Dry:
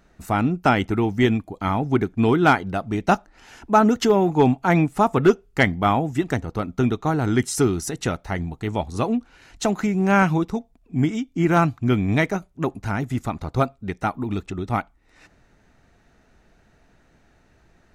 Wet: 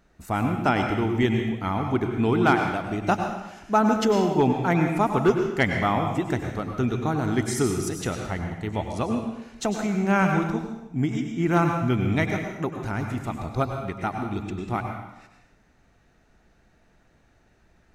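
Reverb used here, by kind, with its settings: plate-style reverb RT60 0.89 s, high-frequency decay 0.95×, pre-delay 85 ms, DRR 3.5 dB; gain -4.5 dB

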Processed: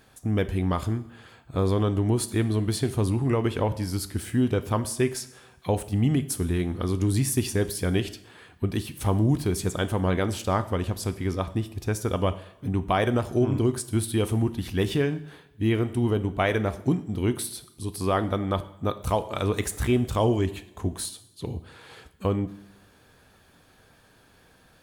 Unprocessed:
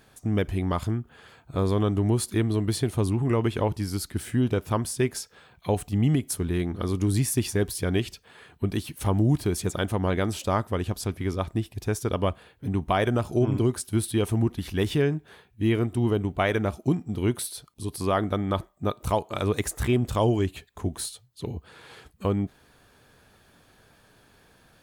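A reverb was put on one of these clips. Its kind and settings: two-slope reverb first 0.67 s, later 1.7 s, DRR 11 dB

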